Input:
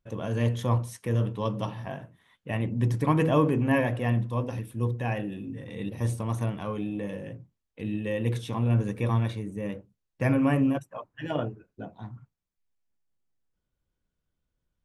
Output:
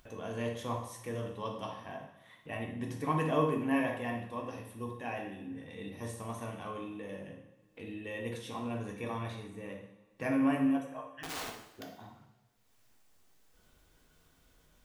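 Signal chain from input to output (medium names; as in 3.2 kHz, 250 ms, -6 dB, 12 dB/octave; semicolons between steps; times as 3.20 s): 11.14–11.99 s: integer overflow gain 28.5 dB; bass shelf 260 Hz -9.5 dB; upward compressor, threshold -39 dBFS; two-slope reverb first 0.71 s, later 2.2 s, DRR 1 dB; trim -7 dB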